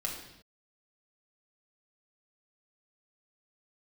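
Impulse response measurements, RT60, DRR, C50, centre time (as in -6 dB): not exponential, -1.5 dB, 4.5 dB, 38 ms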